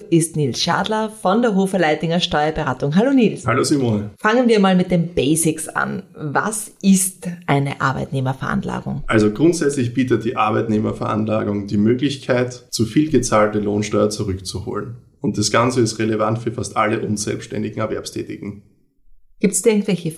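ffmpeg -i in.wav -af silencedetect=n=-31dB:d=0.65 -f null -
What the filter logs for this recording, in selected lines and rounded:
silence_start: 18.58
silence_end: 19.43 | silence_duration: 0.85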